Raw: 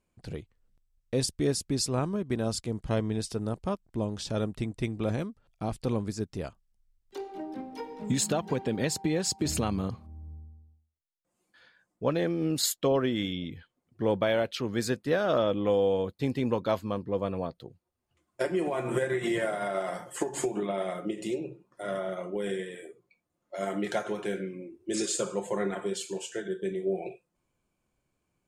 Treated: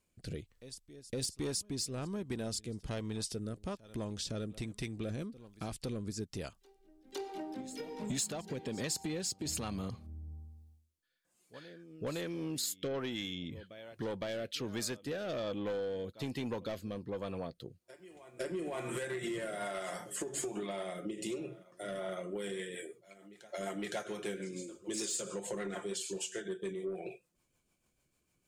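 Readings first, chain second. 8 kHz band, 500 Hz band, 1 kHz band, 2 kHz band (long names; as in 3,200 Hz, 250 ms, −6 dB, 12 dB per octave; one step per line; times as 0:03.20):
−4.0 dB, −9.5 dB, −10.0 dB, −7.0 dB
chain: on a send: backwards echo 512 ms −24 dB
on the sum: soft clipping −22.5 dBFS, distortion −15 dB
rotating-speaker cabinet horn 1.2 Hz, later 6.7 Hz, at 0:21.86
high-shelf EQ 2,400 Hz +9.5 dB
downward compressor 2.5 to 1, threshold −38 dBFS, peak gain reduction 12 dB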